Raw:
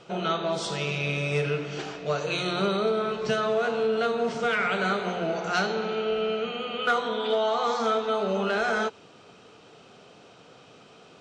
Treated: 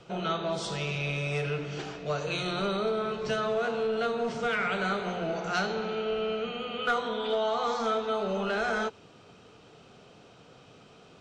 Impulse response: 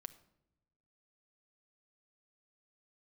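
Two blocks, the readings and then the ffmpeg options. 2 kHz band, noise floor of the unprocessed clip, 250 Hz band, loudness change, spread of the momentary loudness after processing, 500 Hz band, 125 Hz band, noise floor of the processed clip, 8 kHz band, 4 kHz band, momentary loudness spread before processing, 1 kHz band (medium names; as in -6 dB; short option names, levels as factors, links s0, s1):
-3.5 dB, -52 dBFS, -3.0 dB, -3.5 dB, 4 LU, -3.5 dB, -2.0 dB, -55 dBFS, -3.5 dB, -3.5 dB, 4 LU, -3.5 dB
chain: -filter_complex "[0:a]lowshelf=f=120:g=12,acrossover=split=440|670[s0][s1][s2];[s0]asoftclip=type=tanh:threshold=0.0422[s3];[s3][s1][s2]amix=inputs=3:normalize=0,volume=0.668"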